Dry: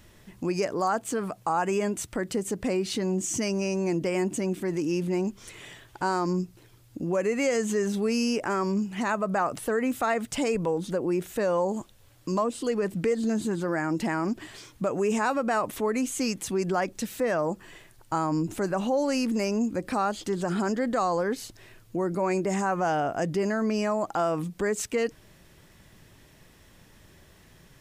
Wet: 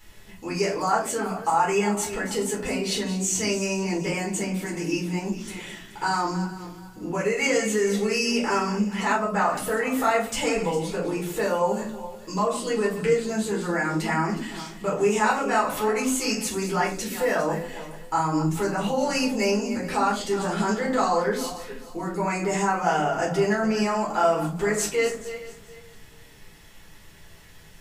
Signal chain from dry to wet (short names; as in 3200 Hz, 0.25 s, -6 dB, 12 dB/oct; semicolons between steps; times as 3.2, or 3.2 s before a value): regenerating reverse delay 0.215 s, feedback 48%, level -12 dB; tilt shelf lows -4.5 dB, about 670 Hz; shoebox room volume 170 m³, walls furnished, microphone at 4.2 m; gain -6 dB